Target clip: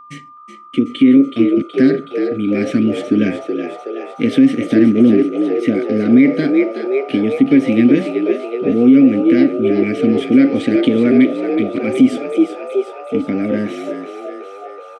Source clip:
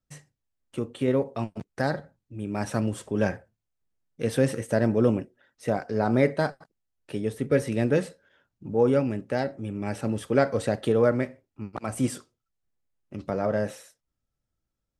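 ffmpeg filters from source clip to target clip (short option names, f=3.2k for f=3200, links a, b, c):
-filter_complex "[0:a]asplit=2[a][b];[b]acompressor=threshold=-33dB:ratio=6,volume=2dB[c];[a][c]amix=inputs=2:normalize=0,asplit=3[d][e][f];[d]bandpass=f=270:t=q:w=8,volume=0dB[g];[e]bandpass=f=2.29k:t=q:w=8,volume=-6dB[h];[f]bandpass=f=3.01k:t=q:w=8,volume=-9dB[i];[g][h][i]amix=inputs=3:normalize=0,aeval=exprs='val(0)+0.00112*sin(2*PI*1200*n/s)':c=same,asplit=9[j][k][l][m][n][o][p][q][r];[k]adelay=373,afreqshift=65,volume=-8.5dB[s];[l]adelay=746,afreqshift=130,volume=-12.5dB[t];[m]adelay=1119,afreqshift=195,volume=-16.5dB[u];[n]adelay=1492,afreqshift=260,volume=-20.5dB[v];[o]adelay=1865,afreqshift=325,volume=-24.6dB[w];[p]adelay=2238,afreqshift=390,volume=-28.6dB[x];[q]adelay=2611,afreqshift=455,volume=-32.6dB[y];[r]adelay=2984,afreqshift=520,volume=-36.6dB[z];[j][s][t][u][v][w][x][y][z]amix=inputs=9:normalize=0,alimiter=level_in=22.5dB:limit=-1dB:release=50:level=0:latency=1,volume=-1dB"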